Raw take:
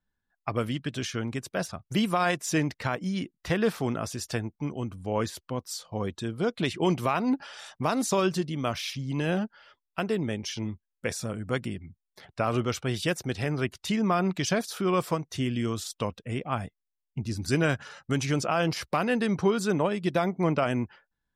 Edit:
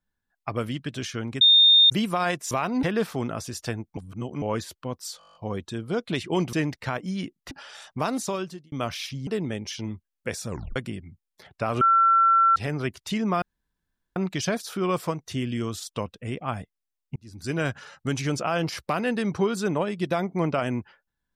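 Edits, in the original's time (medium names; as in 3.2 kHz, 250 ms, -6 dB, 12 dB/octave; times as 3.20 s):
1.41–1.90 s: bleep 3.65 kHz -12 dBFS
2.51–3.49 s: swap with 7.03–7.35 s
4.63–5.08 s: reverse
5.85 s: stutter 0.02 s, 9 plays
7.92–8.56 s: fade out
9.11–10.05 s: delete
11.26 s: tape stop 0.28 s
12.59–13.34 s: bleep 1.35 kHz -15 dBFS
14.20 s: insert room tone 0.74 s
17.20–17.76 s: fade in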